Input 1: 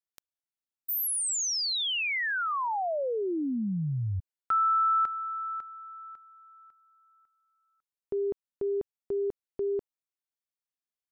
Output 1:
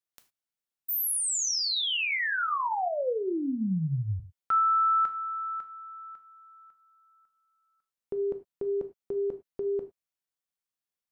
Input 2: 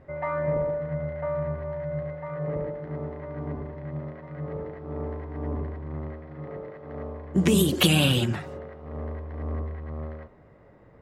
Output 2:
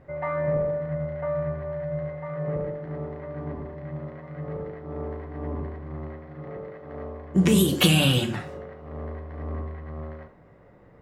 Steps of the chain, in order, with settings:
reverb whose tail is shaped and stops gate 130 ms falling, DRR 6.5 dB

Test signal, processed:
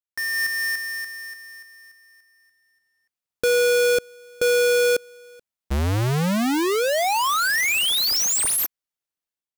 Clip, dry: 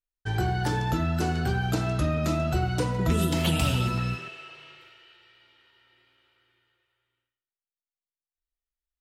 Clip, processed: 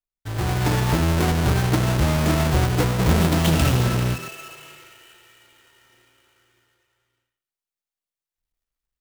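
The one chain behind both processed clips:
each half-wave held at its own peak
automatic gain control gain up to 9.5 dB
level −7.5 dB

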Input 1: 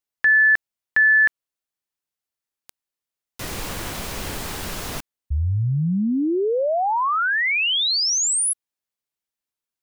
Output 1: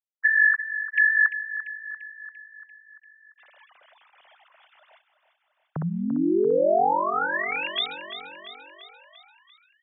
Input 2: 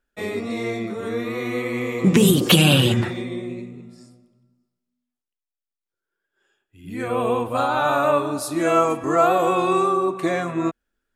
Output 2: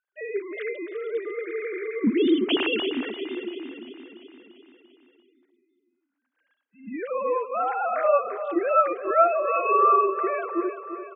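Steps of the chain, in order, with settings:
three sine waves on the formant tracks
on a send: repeating echo 343 ms, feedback 58%, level −11.5 dB
on the sum: level −4.5 dB

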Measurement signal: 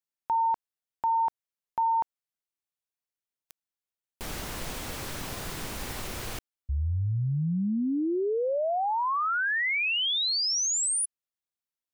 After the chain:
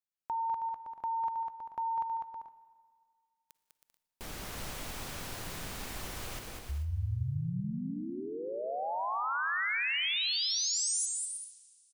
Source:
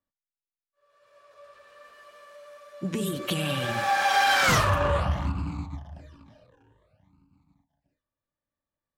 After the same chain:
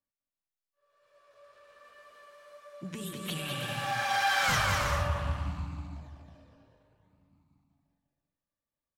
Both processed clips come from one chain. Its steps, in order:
bouncing-ball delay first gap 200 ms, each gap 0.6×, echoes 5
four-comb reverb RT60 2 s, DRR 16 dB
dynamic equaliser 350 Hz, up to −8 dB, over −40 dBFS, Q 0.83
level −6.5 dB

